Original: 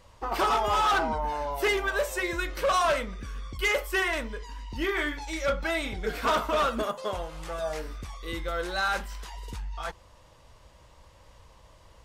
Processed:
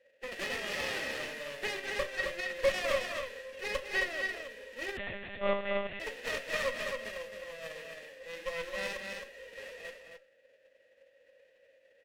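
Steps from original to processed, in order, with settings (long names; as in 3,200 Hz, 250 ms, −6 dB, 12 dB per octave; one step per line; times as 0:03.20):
spectral envelope flattened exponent 0.1
formant filter e
harmonic generator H 6 −13 dB, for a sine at −22.5 dBFS
tuned comb filter 270 Hz, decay 0.16 s, harmonics all, mix 40%
hum removal 150.3 Hz, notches 12
hollow resonant body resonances 220/1,900 Hz, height 8 dB, ringing for 35 ms
on a send: loudspeakers that aren't time-aligned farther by 70 metres −11 dB, 91 metres −5 dB
0:04.97–0:06.00: on the sum: one-pitch LPC vocoder at 8 kHz 200 Hz
one half of a high-frequency compander decoder only
level +6 dB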